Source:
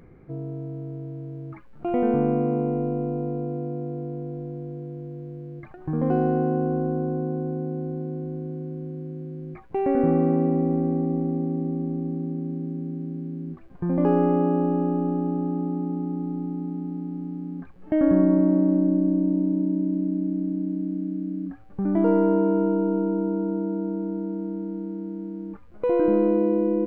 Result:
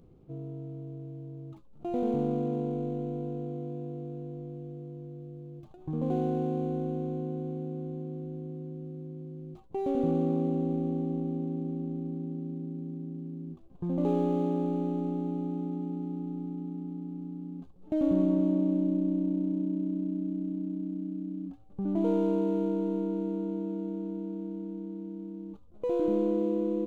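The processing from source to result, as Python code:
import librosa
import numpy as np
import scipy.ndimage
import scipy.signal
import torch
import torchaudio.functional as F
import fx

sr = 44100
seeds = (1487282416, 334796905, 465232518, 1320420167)

y = scipy.signal.medfilt(x, 25)
y = fx.peak_eq(y, sr, hz=1800.0, db=-12.5, octaves=0.93)
y = F.gain(torch.from_numpy(y), -6.5).numpy()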